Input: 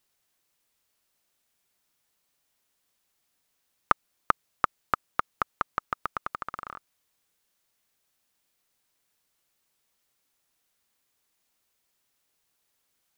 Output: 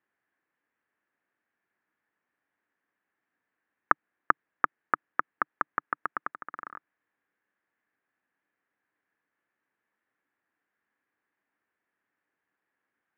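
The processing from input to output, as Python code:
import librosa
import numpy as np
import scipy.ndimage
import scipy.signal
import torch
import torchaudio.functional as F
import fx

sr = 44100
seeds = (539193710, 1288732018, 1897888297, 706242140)

y = fx.cabinet(x, sr, low_hz=140.0, low_slope=12, high_hz=2100.0, hz=(150.0, 300.0, 610.0, 1700.0), db=(-4, 5, -3, 9))
y = fx.level_steps(y, sr, step_db=13, at=(6.31, 6.73))
y = y * librosa.db_to_amplitude(-1.5)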